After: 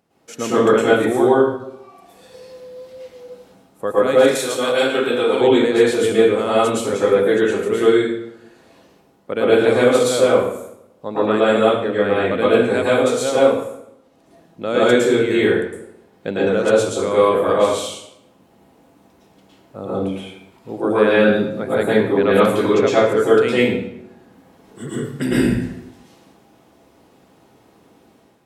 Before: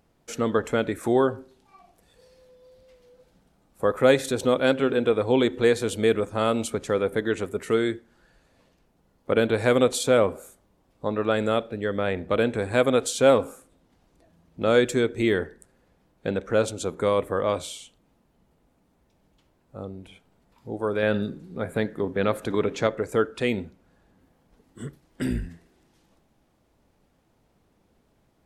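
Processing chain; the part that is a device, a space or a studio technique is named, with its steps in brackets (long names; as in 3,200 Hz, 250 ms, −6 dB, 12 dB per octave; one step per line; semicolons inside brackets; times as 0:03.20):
far laptop microphone (convolution reverb RT60 0.75 s, pre-delay 104 ms, DRR −9 dB; high-pass filter 140 Hz 12 dB per octave; automatic gain control gain up to 7 dB)
0:04.35–0:05.41: spectral tilt +2.5 dB per octave
level −1 dB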